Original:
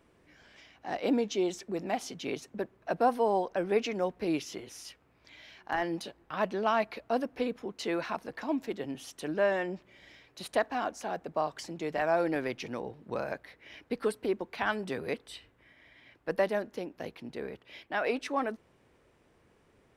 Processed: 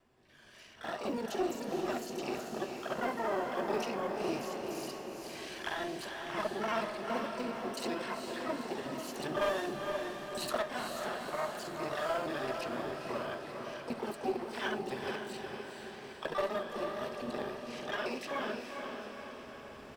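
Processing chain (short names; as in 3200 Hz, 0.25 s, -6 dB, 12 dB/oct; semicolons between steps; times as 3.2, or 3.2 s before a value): local time reversal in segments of 42 ms; recorder AGC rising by 12 dB/s; echo 71 ms -23.5 dB; in parallel at -10 dB: short-mantissa float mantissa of 2-bit; on the sum: flange 0.14 Hz, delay 7.6 ms, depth 9.4 ms, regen -56%; ripple EQ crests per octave 1.4, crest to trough 9 dB; harmoniser -5 st -16 dB, +7 st -16 dB, +12 st -6 dB; one-sided clip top -21 dBFS; on a send: diffused feedback echo 0.462 s, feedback 59%, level -4.5 dB; on the sum: gain -6.5 dB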